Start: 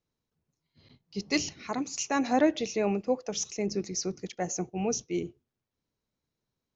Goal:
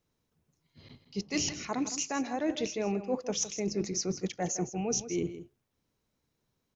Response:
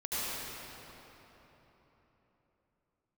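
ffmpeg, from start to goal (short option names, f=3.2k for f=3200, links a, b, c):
-af "equalizer=f=4.3k:w=4.7:g=-3,areverse,acompressor=threshold=-34dB:ratio=10,areverse,aecho=1:1:161:0.237,volume=6dB"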